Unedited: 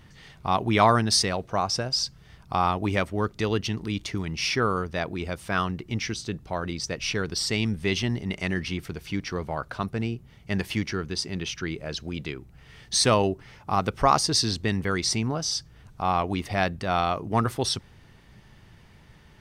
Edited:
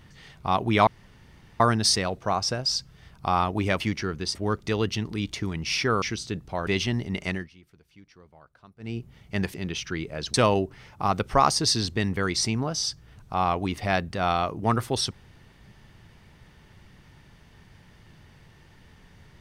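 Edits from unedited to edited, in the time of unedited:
0.87 insert room tone 0.73 s
4.74–6 cut
6.65–7.83 cut
8.45–10.15 dip -22.5 dB, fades 0.20 s
10.7–11.25 move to 3.07
12.05–13.02 cut

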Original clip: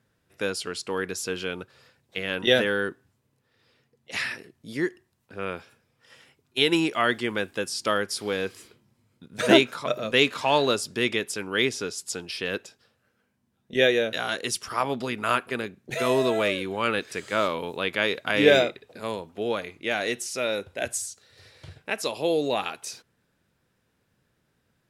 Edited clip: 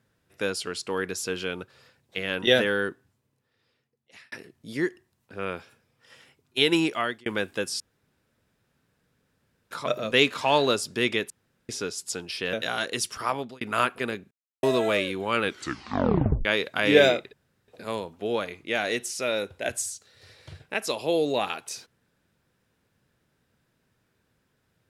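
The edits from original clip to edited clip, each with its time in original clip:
2.84–4.32 fade out
6.88–7.26 fade out linear
7.8–9.71 room tone
11.3–11.69 room tone
12.53–14.04 cut
14.62–15.12 fade out equal-power
15.82–16.14 mute
16.94 tape stop 1.02 s
18.84 insert room tone 0.35 s

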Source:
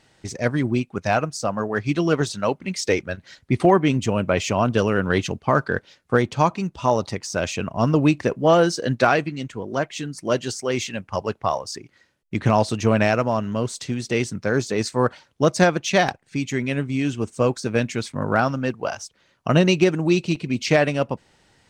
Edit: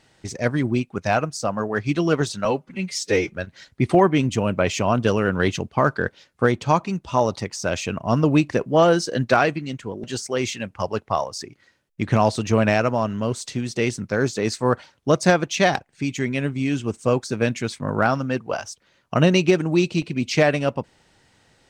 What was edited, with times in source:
2.45–3.04 stretch 1.5×
9.74–10.37 cut

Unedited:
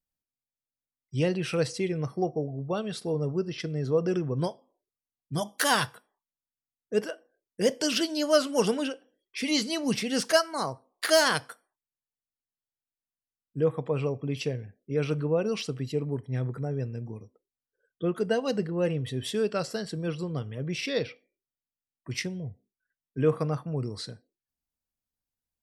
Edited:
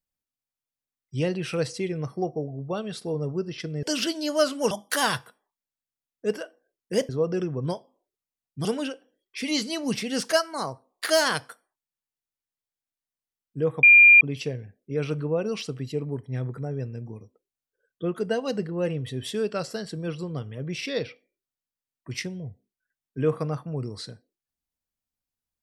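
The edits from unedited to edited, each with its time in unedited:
3.83–5.39 swap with 7.77–8.65
13.83–14.21 bleep 2400 Hz -9 dBFS

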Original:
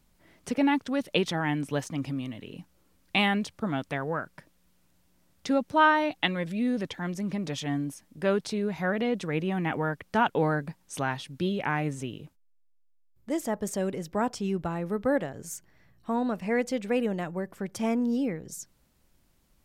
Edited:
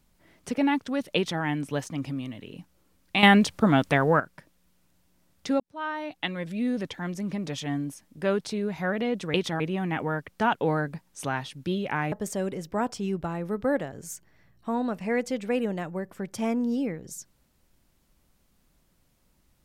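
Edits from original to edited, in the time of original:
1.16–1.42 copy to 9.34
3.23–4.2 gain +9.5 dB
5.6–6.64 fade in
11.86–13.53 cut

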